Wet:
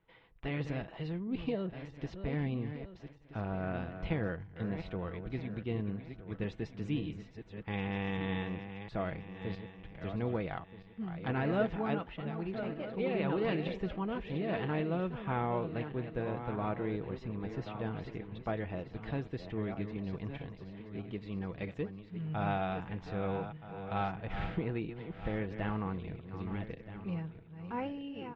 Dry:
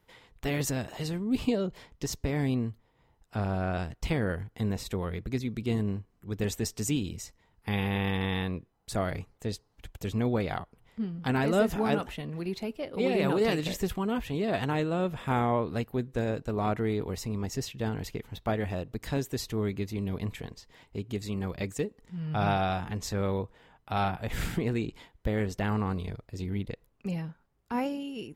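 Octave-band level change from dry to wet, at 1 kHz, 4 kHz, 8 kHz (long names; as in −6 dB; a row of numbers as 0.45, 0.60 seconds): −6.0 dB, −10.5 dB, below −30 dB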